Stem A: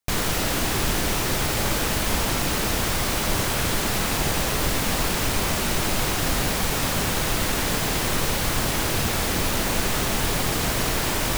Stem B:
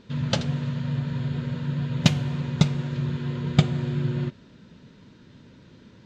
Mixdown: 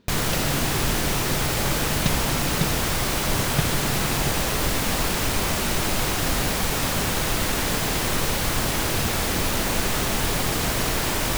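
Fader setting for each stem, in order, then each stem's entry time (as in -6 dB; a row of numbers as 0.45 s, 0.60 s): 0.0 dB, -6.5 dB; 0.00 s, 0.00 s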